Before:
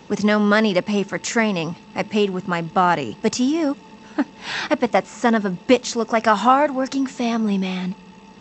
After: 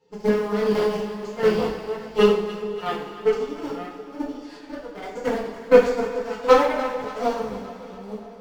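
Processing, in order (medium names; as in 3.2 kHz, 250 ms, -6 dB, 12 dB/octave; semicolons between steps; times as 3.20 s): chunks repeated in reverse 556 ms, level -5 dB; peaking EQ 450 Hz +11.5 dB 0.26 oct; chorus voices 6, 0.44 Hz, delay 12 ms, depth 2.5 ms; peaking EQ 4.6 kHz +8 dB 0.24 oct; in parallel at -9 dB: short-mantissa float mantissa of 2-bit; on the sum: harmonic-percussive split percussive -15 dB; Chebyshev shaper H 4 -21 dB, 7 -18 dB, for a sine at -0.5 dBFS; square tremolo 1.4 Hz, depth 65%, duty 40%; on a send: echo whose repeats swap between lows and highs 144 ms, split 960 Hz, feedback 77%, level -12 dB; on the sum: two-slope reverb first 0.48 s, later 2.7 s, from -15 dB, DRR -6 dB; trim -7 dB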